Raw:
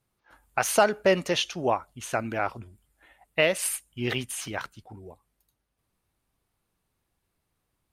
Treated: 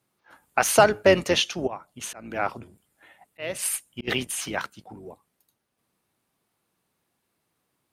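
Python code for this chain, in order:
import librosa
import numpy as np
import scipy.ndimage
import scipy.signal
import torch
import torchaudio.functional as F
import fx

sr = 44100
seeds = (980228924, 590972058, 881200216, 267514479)

y = fx.octave_divider(x, sr, octaves=2, level_db=1.0)
y = scipy.signal.sosfilt(scipy.signal.butter(2, 170.0, 'highpass', fs=sr, output='sos'), y)
y = fx.auto_swell(y, sr, attack_ms=390.0, at=(1.66, 4.07), fade=0.02)
y = y * 10.0 ** (4.0 / 20.0)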